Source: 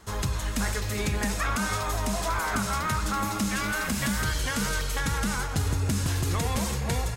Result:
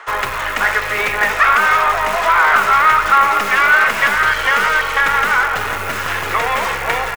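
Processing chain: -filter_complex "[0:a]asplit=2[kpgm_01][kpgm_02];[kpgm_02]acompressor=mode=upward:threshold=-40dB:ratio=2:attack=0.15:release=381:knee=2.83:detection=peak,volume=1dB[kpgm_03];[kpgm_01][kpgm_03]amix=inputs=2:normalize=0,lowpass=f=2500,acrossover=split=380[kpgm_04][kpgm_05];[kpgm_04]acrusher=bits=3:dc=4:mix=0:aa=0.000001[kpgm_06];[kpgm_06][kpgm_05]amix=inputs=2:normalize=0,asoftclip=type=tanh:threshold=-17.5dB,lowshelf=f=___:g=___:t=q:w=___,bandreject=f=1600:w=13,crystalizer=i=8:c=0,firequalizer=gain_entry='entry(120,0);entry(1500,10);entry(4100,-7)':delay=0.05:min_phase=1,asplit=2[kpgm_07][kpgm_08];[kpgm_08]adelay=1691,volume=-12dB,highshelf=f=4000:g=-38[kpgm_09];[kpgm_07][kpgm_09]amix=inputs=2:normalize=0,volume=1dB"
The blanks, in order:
330, -7, 1.5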